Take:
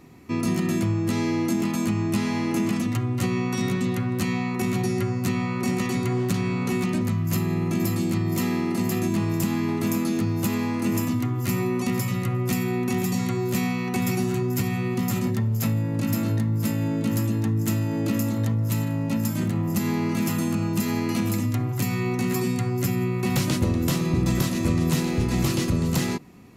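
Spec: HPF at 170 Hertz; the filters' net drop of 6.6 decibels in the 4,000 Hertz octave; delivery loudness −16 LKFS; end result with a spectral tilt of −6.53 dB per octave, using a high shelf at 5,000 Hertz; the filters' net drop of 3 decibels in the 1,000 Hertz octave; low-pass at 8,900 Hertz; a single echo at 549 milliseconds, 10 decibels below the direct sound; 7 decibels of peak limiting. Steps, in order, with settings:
high-pass filter 170 Hz
low-pass filter 8,900 Hz
parametric band 1,000 Hz −3.5 dB
parametric band 4,000 Hz −6.5 dB
high-shelf EQ 5,000 Hz −3.5 dB
brickwall limiter −21 dBFS
single-tap delay 549 ms −10 dB
level +13 dB

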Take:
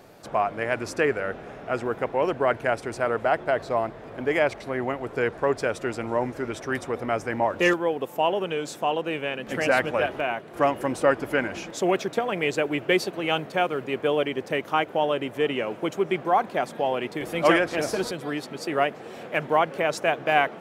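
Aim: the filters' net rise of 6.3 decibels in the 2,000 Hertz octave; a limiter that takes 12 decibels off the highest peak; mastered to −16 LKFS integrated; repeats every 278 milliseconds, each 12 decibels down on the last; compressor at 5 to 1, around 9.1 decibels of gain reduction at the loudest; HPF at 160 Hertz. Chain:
high-pass filter 160 Hz
parametric band 2,000 Hz +8 dB
downward compressor 5 to 1, threshold −23 dBFS
brickwall limiter −22 dBFS
repeating echo 278 ms, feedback 25%, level −12 dB
level +17 dB

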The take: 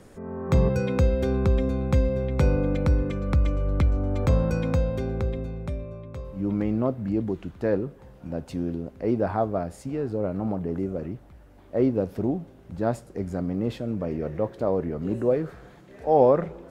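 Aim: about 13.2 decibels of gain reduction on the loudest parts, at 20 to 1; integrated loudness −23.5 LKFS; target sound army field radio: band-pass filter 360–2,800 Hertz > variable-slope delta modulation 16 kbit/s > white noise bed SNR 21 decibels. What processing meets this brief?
downward compressor 20 to 1, threshold −28 dBFS
band-pass filter 360–2,800 Hz
variable-slope delta modulation 16 kbit/s
white noise bed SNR 21 dB
level +16 dB

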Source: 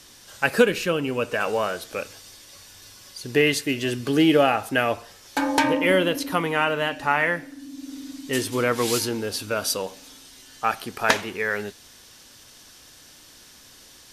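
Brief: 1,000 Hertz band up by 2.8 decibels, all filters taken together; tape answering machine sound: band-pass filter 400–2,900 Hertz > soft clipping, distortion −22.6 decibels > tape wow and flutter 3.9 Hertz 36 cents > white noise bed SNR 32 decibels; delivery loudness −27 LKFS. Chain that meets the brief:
band-pass filter 400–2,900 Hz
parametric band 1,000 Hz +4 dB
soft clipping −6.5 dBFS
tape wow and flutter 3.9 Hz 36 cents
white noise bed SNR 32 dB
level −2.5 dB

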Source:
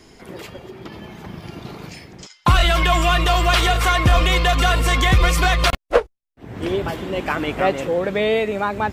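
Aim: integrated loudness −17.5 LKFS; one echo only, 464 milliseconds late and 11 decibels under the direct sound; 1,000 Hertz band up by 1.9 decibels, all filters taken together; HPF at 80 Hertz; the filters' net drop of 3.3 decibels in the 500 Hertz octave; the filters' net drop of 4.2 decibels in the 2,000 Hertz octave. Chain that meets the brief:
high-pass filter 80 Hz
parametric band 500 Hz −6.5 dB
parametric band 1,000 Hz +7 dB
parametric band 2,000 Hz −8 dB
single-tap delay 464 ms −11 dB
level +2.5 dB

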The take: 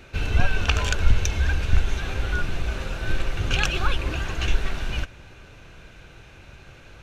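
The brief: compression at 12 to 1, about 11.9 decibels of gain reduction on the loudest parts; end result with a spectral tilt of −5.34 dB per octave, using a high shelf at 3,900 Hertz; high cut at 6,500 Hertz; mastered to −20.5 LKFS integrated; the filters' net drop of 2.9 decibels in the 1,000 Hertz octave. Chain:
low-pass filter 6,500 Hz
parametric band 1,000 Hz −3.5 dB
high-shelf EQ 3,900 Hz −6.5 dB
downward compressor 12 to 1, threshold −21 dBFS
level +10.5 dB

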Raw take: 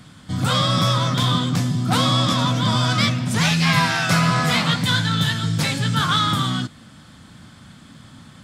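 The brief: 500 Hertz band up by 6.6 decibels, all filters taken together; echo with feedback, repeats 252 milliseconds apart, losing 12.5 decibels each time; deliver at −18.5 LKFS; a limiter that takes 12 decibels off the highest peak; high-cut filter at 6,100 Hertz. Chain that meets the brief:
low-pass filter 6,100 Hz
parametric band 500 Hz +8 dB
brickwall limiter −15.5 dBFS
repeating echo 252 ms, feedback 24%, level −12.5 dB
level +5 dB

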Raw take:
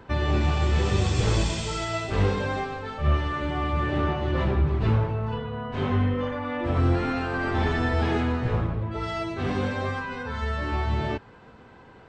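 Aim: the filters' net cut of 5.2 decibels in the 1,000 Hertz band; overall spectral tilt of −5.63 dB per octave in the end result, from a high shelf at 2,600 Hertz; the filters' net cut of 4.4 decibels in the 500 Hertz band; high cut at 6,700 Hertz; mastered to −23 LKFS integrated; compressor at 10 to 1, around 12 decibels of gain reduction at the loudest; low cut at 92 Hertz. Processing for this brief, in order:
high-pass filter 92 Hz
low-pass filter 6,700 Hz
parametric band 500 Hz −4.5 dB
parametric band 1,000 Hz −4.5 dB
high-shelf EQ 2,600 Hz −5.5 dB
downward compressor 10 to 1, threshold −33 dBFS
level +14.5 dB

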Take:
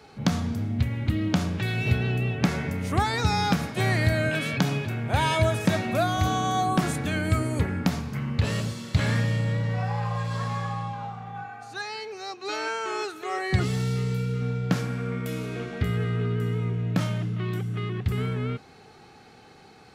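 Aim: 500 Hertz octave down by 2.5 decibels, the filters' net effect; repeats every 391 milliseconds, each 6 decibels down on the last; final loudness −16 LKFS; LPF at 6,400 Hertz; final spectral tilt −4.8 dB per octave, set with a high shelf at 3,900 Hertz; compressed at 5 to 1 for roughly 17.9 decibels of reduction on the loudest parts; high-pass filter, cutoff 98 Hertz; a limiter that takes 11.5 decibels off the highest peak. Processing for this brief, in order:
high-pass filter 98 Hz
low-pass filter 6,400 Hz
parametric band 500 Hz −3.5 dB
high-shelf EQ 3,900 Hz +3 dB
downward compressor 5 to 1, threshold −40 dBFS
brickwall limiter −33 dBFS
repeating echo 391 ms, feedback 50%, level −6 dB
level +25.5 dB

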